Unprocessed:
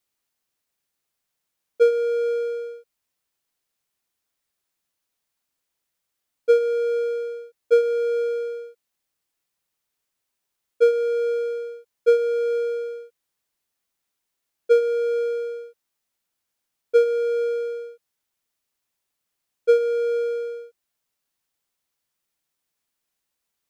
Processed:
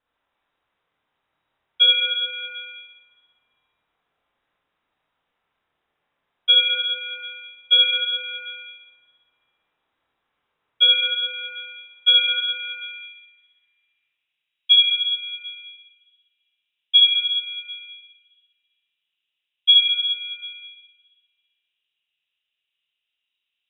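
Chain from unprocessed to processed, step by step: Schroeder reverb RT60 1.6 s, combs from 25 ms, DRR -6 dB; low-pass sweep 2.9 kHz -> 1 kHz, 11.81–15.01 s; frequency inversion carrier 3.8 kHz

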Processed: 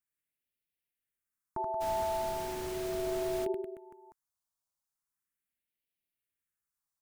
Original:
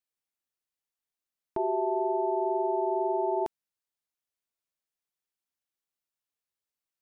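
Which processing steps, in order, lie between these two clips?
reverse bouncing-ball echo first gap 80 ms, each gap 1.25×, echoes 5; phase shifter stages 4, 0.38 Hz, lowest notch 390–1100 Hz; 1.80–3.44 s: added noise pink -43 dBFS

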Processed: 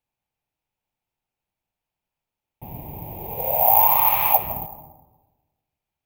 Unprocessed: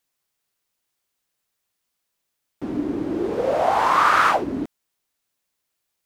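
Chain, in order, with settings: FFT filter 150 Hz 0 dB, 290 Hz -24 dB, 890 Hz +9 dB, 1.4 kHz -26 dB, 2.4 kHz +6 dB, 4.9 kHz -10 dB, 11 kHz -5 dB; reverberation RT60 1.2 s, pre-delay 100 ms, DRR 11 dB; careless resampling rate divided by 3×, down none, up zero stuff; bass shelf 310 Hz +9 dB; tape noise reduction on one side only decoder only; trim -5 dB

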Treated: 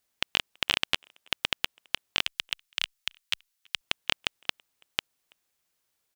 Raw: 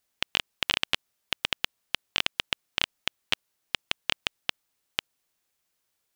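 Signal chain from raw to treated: 2.23–3.81 s: amplifier tone stack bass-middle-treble 10-0-10; speakerphone echo 330 ms, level -28 dB

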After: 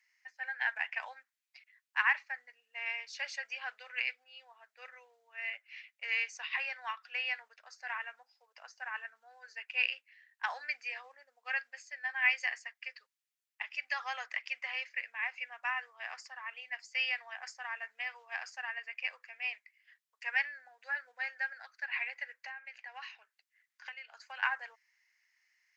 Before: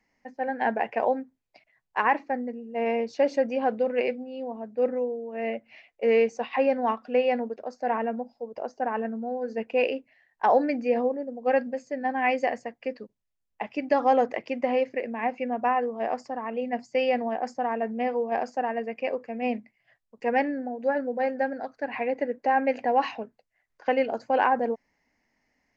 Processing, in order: high-pass 1.5 kHz 24 dB/octave; 22.37–24.43 s: compression 16:1, threshold -45 dBFS, peak gain reduction 16.5 dB; trim +2 dB

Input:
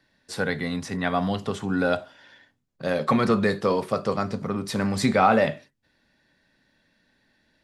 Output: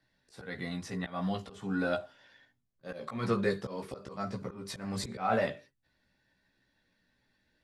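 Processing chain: slow attack 194 ms; chorus voices 6, 0.46 Hz, delay 16 ms, depth 1.5 ms; trim -5 dB

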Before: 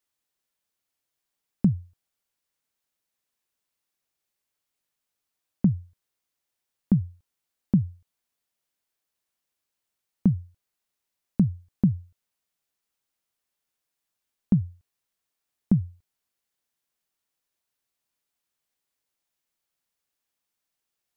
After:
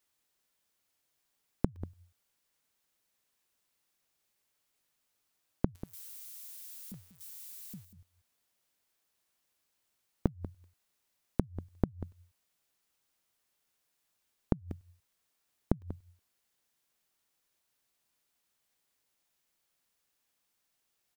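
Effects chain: 5.75–7.85 s: zero-crossing glitches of -16 dBFS; inverted gate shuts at -16 dBFS, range -32 dB; delay 190 ms -15 dB; crackling interface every 0.37 s, samples 64, zero, from 0.65 s; trim +4 dB

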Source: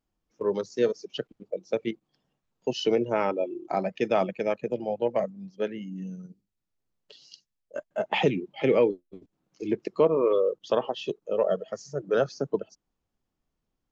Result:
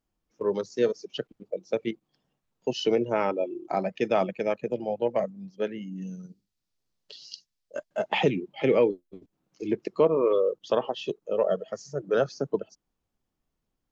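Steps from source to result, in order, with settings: 6.01–8.14 s: peaking EQ 4.8 kHz +8.5 dB 1.2 oct

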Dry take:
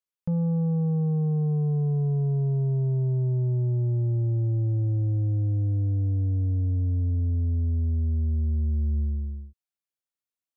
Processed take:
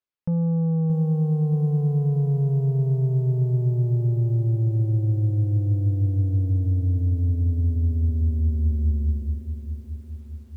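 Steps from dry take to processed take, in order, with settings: distance through air 160 m; bit-crushed delay 625 ms, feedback 55%, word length 10-bit, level -10 dB; trim +2.5 dB

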